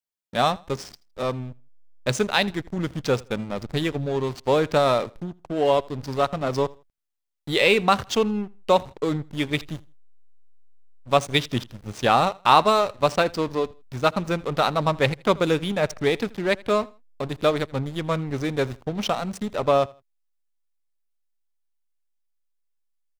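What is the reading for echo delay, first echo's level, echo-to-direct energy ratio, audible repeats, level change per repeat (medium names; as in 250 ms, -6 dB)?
81 ms, -23.5 dB, -23.0 dB, 2, -11.5 dB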